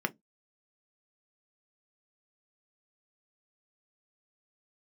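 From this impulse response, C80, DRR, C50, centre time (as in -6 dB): 41.5 dB, 7.0 dB, 27.0 dB, 4 ms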